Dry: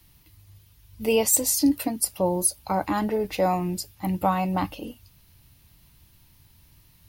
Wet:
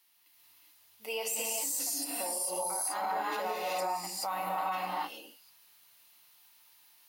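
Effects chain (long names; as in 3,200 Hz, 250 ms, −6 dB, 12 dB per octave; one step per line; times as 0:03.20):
high-pass filter 780 Hz 12 dB per octave
reverb whose tail is shaped and stops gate 450 ms rising, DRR −6.5 dB
brickwall limiter −16.5 dBFS, peak gain reduction 11 dB
level −8 dB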